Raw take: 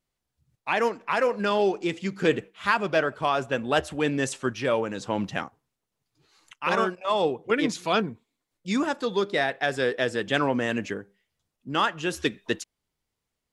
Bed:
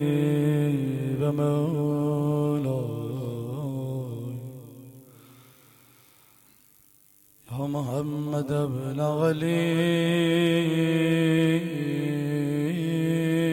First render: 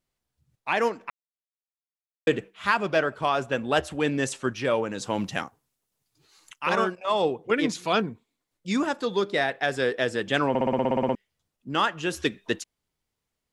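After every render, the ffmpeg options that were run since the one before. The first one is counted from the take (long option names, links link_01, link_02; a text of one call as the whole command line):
ffmpeg -i in.wav -filter_complex "[0:a]asettb=1/sr,asplit=3[link_01][link_02][link_03];[link_01]atrim=end=4.984[link_04];[link_02]atrim=start=4.98:end=6.66,asetpts=PTS-STARTPTS,afade=type=in:duration=0.004:curve=qsin,afade=type=out:start_time=1.676:duration=0.004:curve=qsin,aemphasis=mode=production:type=cd[link_05];[link_03]atrim=start=6.656[link_06];[link_04][link_05]acrossfade=duration=0.004:curve1=hsin:curve2=qsin[link_07];[link_07][link_06]acrossfade=duration=0.004:curve1=qsin:curve2=hsin,asplit=14[link_08][link_09][link_10][link_11][link_12][link_13][link_14][link_15][link_16][link_17][link_18][link_19][link_20][link_21];[link_08]atrim=end=1.1,asetpts=PTS-STARTPTS,afade=type=out:start_time=1.096:duration=0.004:curve=hsin[link_22];[link_09]atrim=start=1.1:end=2.27,asetpts=PTS-STARTPTS,volume=0[link_23];[link_10]atrim=start=2.27:end=10.552,asetpts=PTS-STARTPTS,afade=type=in:duration=0.004:curve=hsin[link_24];[link_11]atrim=start=10.488:end=10.552[link_25];[link_12]atrim=start=10.488:end=10.552[link_26];[link_13]atrim=start=10.488:end=10.552[link_27];[link_14]atrim=start=10.488:end=10.552[link_28];[link_15]atrim=start=10.488:end=10.552[link_29];[link_16]atrim=start=10.488:end=10.552[link_30];[link_17]atrim=start=10.488:end=10.552[link_31];[link_18]atrim=start=10.488:end=10.552[link_32];[link_19]atrim=start=10.488:end=10.552[link_33];[link_20]atrim=start=10.488:end=10.552[link_34];[link_21]atrim=start=11.148[link_35];[link_22][link_23][link_24]concat=n=3:v=0:a=1[link_36];[link_36][link_25]acrossfade=duration=0.004:curve1=hsin:curve2=hsin[link_37];[link_37][link_26]acrossfade=duration=0.004:curve1=hsin:curve2=hsin[link_38];[link_38][link_27]acrossfade=duration=0.004:curve1=hsin:curve2=hsin[link_39];[link_39][link_28]acrossfade=duration=0.004:curve1=hsin:curve2=hsin[link_40];[link_40][link_29]acrossfade=duration=0.004:curve1=hsin:curve2=hsin[link_41];[link_41][link_30]acrossfade=duration=0.004:curve1=hsin:curve2=hsin[link_42];[link_42][link_31]acrossfade=duration=0.004:curve1=hsin:curve2=hsin[link_43];[link_43][link_32]acrossfade=duration=0.004:curve1=hsin:curve2=hsin[link_44];[link_44][link_33]acrossfade=duration=0.004:curve1=hsin:curve2=hsin[link_45];[link_45][link_34]acrossfade=duration=0.004:curve1=hsin:curve2=hsin[link_46];[link_46][link_35]acrossfade=duration=0.004:curve1=hsin:curve2=hsin" out.wav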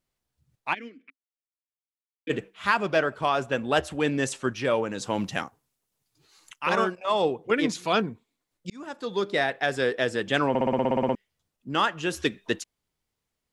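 ffmpeg -i in.wav -filter_complex "[0:a]asplit=3[link_01][link_02][link_03];[link_01]afade=type=out:start_time=0.73:duration=0.02[link_04];[link_02]asplit=3[link_05][link_06][link_07];[link_05]bandpass=frequency=270:width_type=q:width=8,volume=0dB[link_08];[link_06]bandpass=frequency=2290:width_type=q:width=8,volume=-6dB[link_09];[link_07]bandpass=frequency=3010:width_type=q:width=8,volume=-9dB[link_10];[link_08][link_09][link_10]amix=inputs=3:normalize=0,afade=type=in:start_time=0.73:duration=0.02,afade=type=out:start_time=2.29:duration=0.02[link_11];[link_03]afade=type=in:start_time=2.29:duration=0.02[link_12];[link_04][link_11][link_12]amix=inputs=3:normalize=0,asplit=2[link_13][link_14];[link_13]atrim=end=8.7,asetpts=PTS-STARTPTS,afade=type=out:start_time=8.696:duration=0.004:curve=hsin[link_15];[link_14]atrim=start=8.7,asetpts=PTS-STARTPTS,afade=type=in:duration=0.62[link_16];[link_15][link_16]concat=n=2:v=0:a=1" out.wav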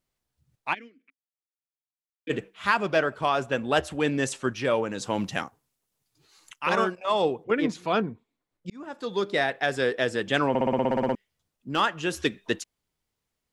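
ffmpeg -i in.wav -filter_complex "[0:a]asettb=1/sr,asplit=3[link_01][link_02][link_03];[link_01]atrim=end=7.444[link_04];[link_02]atrim=start=7.44:end=8.93,asetpts=PTS-STARTPTS,afade=type=in:duration=0.004:curve=qsin,afade=type=out:start_time=1.486:duration=0.004:curve=qsin,highshelf=frequency=3100:gain=-11[link_05];[link_03]atrim=start=8.926[link_06];[link_04][link_05]acrossfade=duration=0.004:curve1=hsin:curve2=qsin[link_07];[link_07][link_06]acrossfade=duration=0.004:curve1=qsin:curve2=hsin,asettb=1/sr,asplit=3[link_08][link_09][link_10];[link_08]atrim=end=10.914[link_11];[link_09]atrim=start=10.91:end=11.8,asetpts=PTS-STARTPTS,afade=type=in:duration=0.004:curve=qsin,afade=type=out:start_time=0.886:duration=0.004:curve=qsin,volume=16dB,asoftclip=hard,volume=-16dB[link_12];[link_10]atrim=start=11.796[link_13];[link_11][link_12]acrossfade=duration=0.004:curve1=hsin:curve2=qsin[link_14];[link_14][link_13]acrossfade=duration=0.004:curve1=qsin:curve2=hsin,asplit=3[link_15][link_16][link_17];[link_15]atrim=end=0.88,asetpts=PTS-STARTPTS,afade=type=out:start_time=0.71:duration=0.17:silence=0.334965[link_18];[link_16]atrim=start=0.88:end=2.16,asetpts=PTS-STARTPTS,volume=-9.5dB[link_19];[link_17]atrim=start=2.16,asetpts=PTS-STARTPTS,afade=type=in:duration=0.17:silence=0.334965[link_20];[link_18][link_19][link_20]concat=n=3:v=0:a=1" out.wav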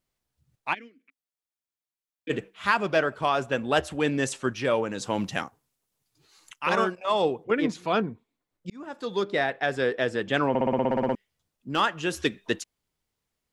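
ffmpeg -i in.wav -filter_complex "[0:a]asettb=1/sr,asplit=3[link_01][link_02][link_03];[link_01]atrim=end=9.234[link_04];[link_02]atrim=start=9.23:end=11.12,asetpts=PTS-STARTPTS,afade=type=in:duration=0.004:curve=qsin,afade=type=out:start_time=1.886:duration=0.004:curve=qsin,highshelf=frequency=4700:gain=-9[link_05];[link_03]atrim=start=11.116[link_06];[link_04][link_05]acrossfade=duration=0.004:curve1=hsin:curve2=qsin[link_07];[link_07][link_06]acrossfade=duration=0.004:curve1=qsin:curve2=hsin" out.wav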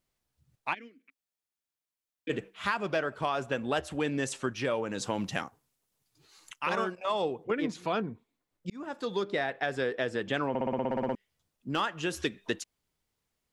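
ffmpeg -i in.wav -af "acompressor=threshold=-29dB:ratio=2.5" out.wav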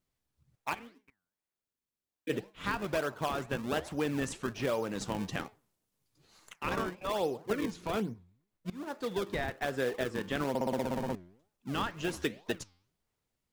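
ffmpeg -i in.wav -filter_complex "[0:a]asplit=2[link_01][link_02];[link_02]acrusher=samples=37:mix=1:aa=0.000001:lfo=1:lforange=59.2:lforate=1.2,volume=-5dB[link_03];[link_01][link_03]amix=inputs=2:normalize=0,flanger=delay=4.6:depth=6.9:regen=90:speed=2:shape=sinusoidal" out.wav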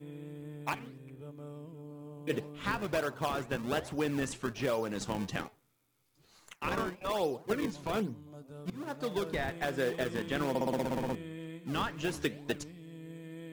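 ffmpeg -i in.wav -i bed.wav -filter_complex "[1:a]volume=-22dB[link_01];[0:a][link_01]amix=inputs=2:normalize=0" out.wav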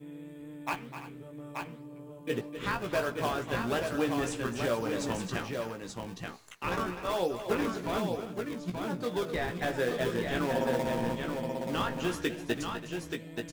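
ffmpeg -i in.wav -filter_complex "[0:a]asplit=2[link_01][link_02];[link_02]adelay=17,volume=-5dB[link_03];[link_01][link_03]amix=inputs=2:normalize=0,aecho=1:1:254|331|880:0.282|0.168|0.562" out.wav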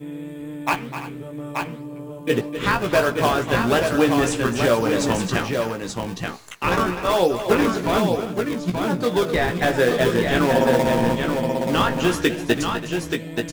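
ffmpeg -i in.wav -af "volume=12dB" out.wav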